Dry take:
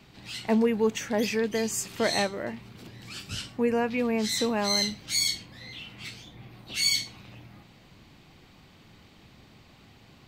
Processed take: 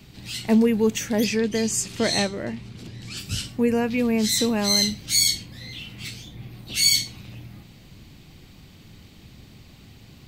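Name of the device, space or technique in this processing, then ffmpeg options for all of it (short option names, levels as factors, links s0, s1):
smiley-face EQ: -filter_complex "[0:a]asettb=1/sr,asplit=3[s0][s1][s2];[s0]atrim=end=1.244[s3];[s1]atrim=start=1.24:end=3.17,asetpts=PTS-STARTPTS,afade=t=in:d=0.004:c=qsin,afade=t=out:st=1.926:d=0.004:c=qsin,lowpass=8300[s4];[s2]atrim=start=3.166[s5];[s3][s4]acrossfade=d=0.004:c1=hsin:c2=qsin[s6];[s6][s5]acrossfade=d=0.004:c1=qsin:c2=hsin,lowshelf=f=170:g=6,equalizer=f=1000:t=o:w=2.1:g=-6.5,highshelf=f=7700:g=7.5,volume=1.78"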